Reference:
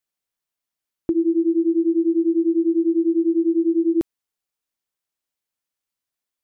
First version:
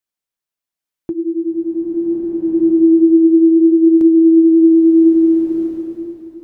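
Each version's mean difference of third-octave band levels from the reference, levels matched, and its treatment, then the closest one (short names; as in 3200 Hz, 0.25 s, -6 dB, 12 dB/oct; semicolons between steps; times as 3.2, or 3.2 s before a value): 2.5 dB: dynamic EQ 150 Hz, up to +4 dB, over -41 dBFS, Q 1.6; flange 0.74 Hz, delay 2.7 ms, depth 6.3 ms, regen -74%; bloom reverb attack 1.62 s, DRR -7.5 dB; gain +3 dB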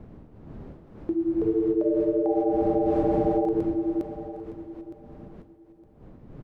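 12.0 dB: wind noise 250 Hz -35 dBFS; echoes that change speed 0.6 s, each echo +5 st, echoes 3; on a send: feedback echo 0.913 s, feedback 22%, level -13.5 dB; on the sum: gain -6.5 dB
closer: first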